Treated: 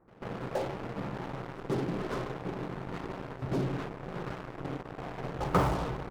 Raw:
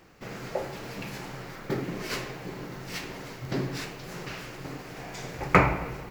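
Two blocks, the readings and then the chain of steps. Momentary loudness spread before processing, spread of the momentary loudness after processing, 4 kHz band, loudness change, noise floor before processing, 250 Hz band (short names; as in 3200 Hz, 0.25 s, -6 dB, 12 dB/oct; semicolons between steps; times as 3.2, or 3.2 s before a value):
17 LU, 10 LU, -8.0 dB, -3.5 dB, -43 dBFS, -1.0 dB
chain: LPF 1300 Hz 24 dB/oct; in parallel at -11 dB: fuzz box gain 40 dB, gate -40 dBFS; on the sum: reverse echo 0.141 s -18.5 dB; gain -8 dB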